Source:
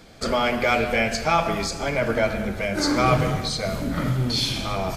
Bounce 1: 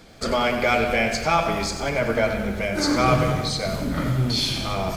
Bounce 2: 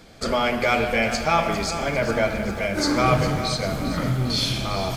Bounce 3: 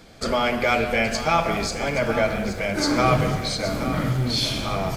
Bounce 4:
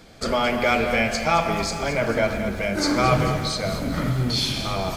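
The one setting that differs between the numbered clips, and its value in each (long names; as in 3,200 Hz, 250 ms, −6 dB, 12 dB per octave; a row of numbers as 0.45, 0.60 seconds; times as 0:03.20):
feedback echo at a low word length, delay time: 93, 402, 822, 219 milliseconds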